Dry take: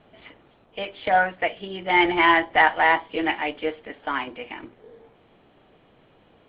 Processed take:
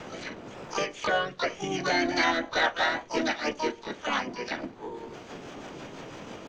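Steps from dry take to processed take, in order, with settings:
rotating-speaker cabinet horn 1 Hz, later 6 Hz, at 0:01.76
pitch-shifted copies added −5 semitones −3 dB, −3 semitones −6 dB, +12 semitones −3 dB
multiband upward and downward compressor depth 70%
level −4.5 dB

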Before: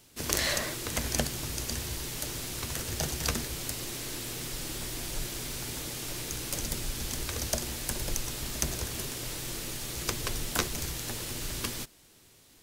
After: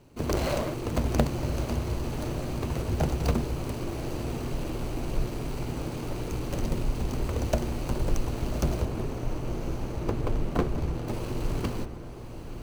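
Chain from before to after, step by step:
running median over 25 samples
0:08.85–0:11.08: high-shelf EQ 3,400 Hz −11 dB
feedback delay with all-pass diffusion 1,119 ms, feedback 42%, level −10 dB
level +8.5 dB

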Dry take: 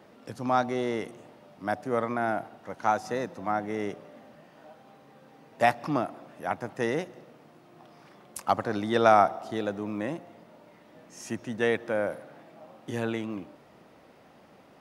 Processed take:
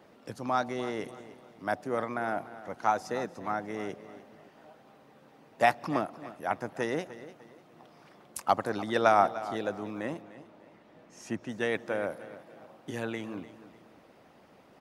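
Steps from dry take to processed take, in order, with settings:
0:10.21–0:11.49: high-shelf EQ 6,200 Hz −9 dB
repeating echo 297 ms, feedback 33%, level −15.5 dB
harmonic and percussive parts rebalanced harmonic −6 dB

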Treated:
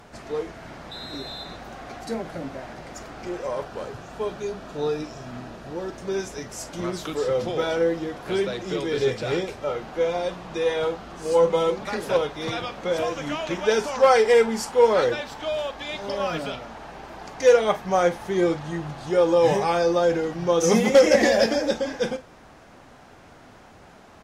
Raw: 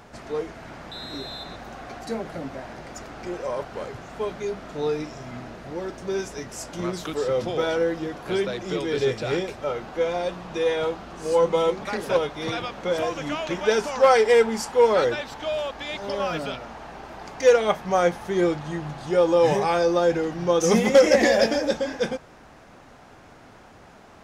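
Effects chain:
0:03.65–0:05.92: notch filter 2,100 Hz, Q 9.3
ambience of single reflections 36 ms −18 dB, 48 ms −16.5 dB
Ogg Vorbis 48 kbit/s 48,000 Hz

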